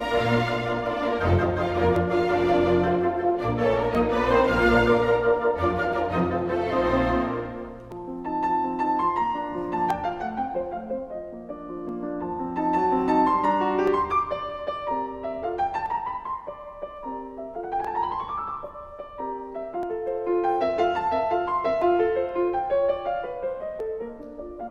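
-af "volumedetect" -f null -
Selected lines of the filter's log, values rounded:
mean_volume: -24.8 dB
max_volume: -7.4 dB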